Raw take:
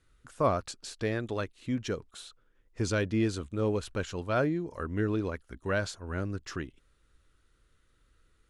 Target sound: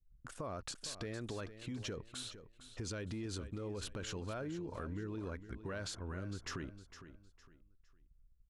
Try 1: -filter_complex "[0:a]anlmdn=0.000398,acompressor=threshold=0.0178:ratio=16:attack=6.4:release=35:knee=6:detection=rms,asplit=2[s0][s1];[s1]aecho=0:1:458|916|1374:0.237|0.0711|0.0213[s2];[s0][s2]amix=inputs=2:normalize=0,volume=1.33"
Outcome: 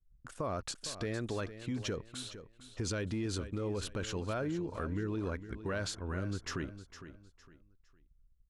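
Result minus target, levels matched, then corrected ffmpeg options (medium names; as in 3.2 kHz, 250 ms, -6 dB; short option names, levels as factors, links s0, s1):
compression: peak gain reduction -6.5 dB
-filter_complex "[0:a]anlmdn=0.000398,acompressor=threshold=0.00794:ratio=16:attack=6.4:release=35:knee=6:detection=rms,asplit=2[s0][s1];[s1]aecho=0:1:458|916|1374:0.237|0.0711|0.0213[s2];[s0][s2]amix=inputs=2:normalize=0,volume=1.33"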